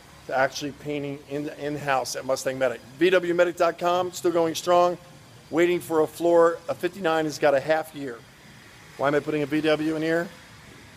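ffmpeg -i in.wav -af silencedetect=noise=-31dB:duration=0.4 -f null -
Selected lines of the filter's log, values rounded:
silence_start: 4.95
silence_end: 5.52 | silence_duration: 0.57
silence_start: 8.15
silence_end: 8.99 | silence_duration: 0.84
silence_start: 10.27
silence_end: 10.97 | silence_duration: 0.70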